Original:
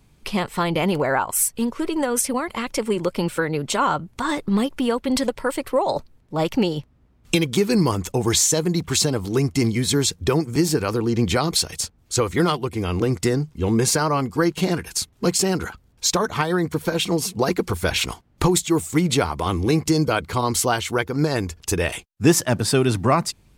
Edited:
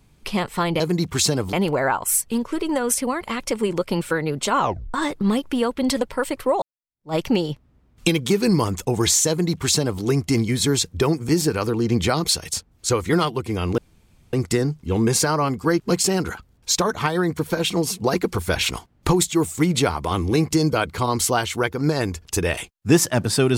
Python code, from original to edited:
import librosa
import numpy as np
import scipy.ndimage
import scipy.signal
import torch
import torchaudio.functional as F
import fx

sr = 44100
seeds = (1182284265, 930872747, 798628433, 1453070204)

y = fx.edit(x, sr, fx.tape_stop(start_s=3.87, length_s=0.34),
    fx.fade_in_span(start_s=5.89, length_s=0.53, curve='exp'),
    fx.duplicate(start_s=8.56, length_s=0.73, to_s=0.8),
    fx.insert_room_tone(at_s=13.05, length_s=0.55),
    fx.cut(start_s=14.52, length_s=0.63), tone=tone)